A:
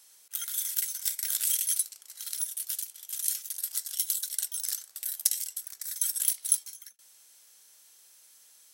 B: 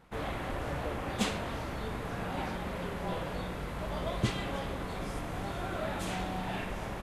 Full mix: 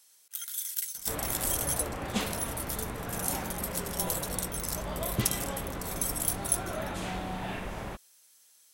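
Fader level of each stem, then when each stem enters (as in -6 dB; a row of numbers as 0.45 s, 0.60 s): -3.5 dB, 0.0 dB; 0.00 s, 0.95 s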